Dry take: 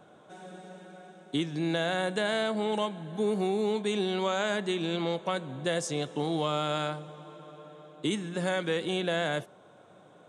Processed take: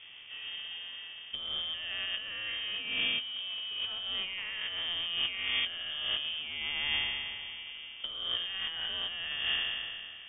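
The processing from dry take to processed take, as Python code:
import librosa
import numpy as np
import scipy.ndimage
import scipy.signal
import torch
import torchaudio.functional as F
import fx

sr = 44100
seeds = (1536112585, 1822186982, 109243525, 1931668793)

y = fx.spec_trails(x, sr, decay_s=2.18)
y = fx.low_shelf(y, sr, hz=100.0, db=10.0)
y = fx.over_compress(y, sr, threshold_db=-30.0, ratio=-0.5)
y = fx.quant_companded(y, sr, bits=4)
y = fx.air_absorb(y, sr, metres=320.0)
y = fx.freq_invert(y, sr, carrier_hz=3400)
y = y * 10.0 ** (-3.0 / 20.0)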